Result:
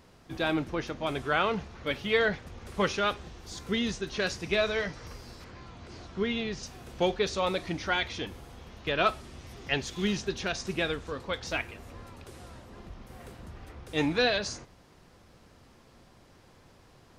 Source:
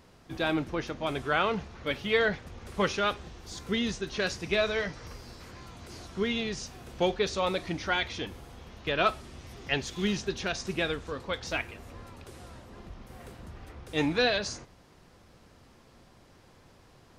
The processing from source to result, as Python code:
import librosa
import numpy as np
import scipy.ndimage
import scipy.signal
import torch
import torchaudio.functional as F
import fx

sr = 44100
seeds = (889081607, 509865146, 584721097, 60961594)

y = fx.air_absorb(x, sr, metres=97.0, at=(5.44, 6.63))